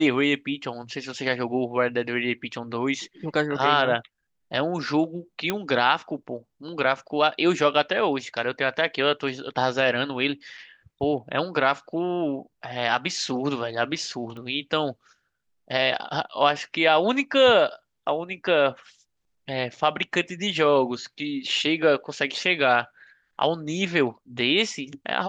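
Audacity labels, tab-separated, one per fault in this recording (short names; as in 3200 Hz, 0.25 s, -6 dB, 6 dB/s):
5.500000	5.500000	pop -9 dBFS
14.370000	14.370000	pop -29 dBFS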